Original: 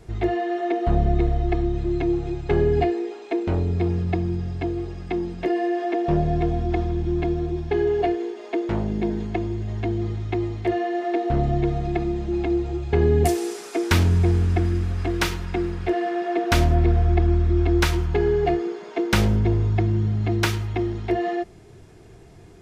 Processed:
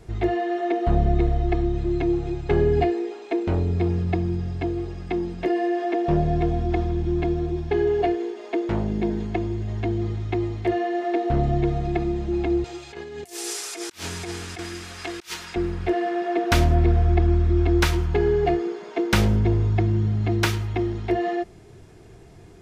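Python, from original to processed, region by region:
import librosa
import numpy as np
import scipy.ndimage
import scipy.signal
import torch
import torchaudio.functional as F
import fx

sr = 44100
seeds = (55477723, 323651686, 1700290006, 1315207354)

y = fx.chain(x, sr, fx.highpass(hz=1200.0, slope=6),
    fx.peak_eq(hz=7500.0, db=7.5, octaves=2.5),
    fx.over_compress(threshold_db=-33.0, ratio=-0.5), at=(12.64, 15.56))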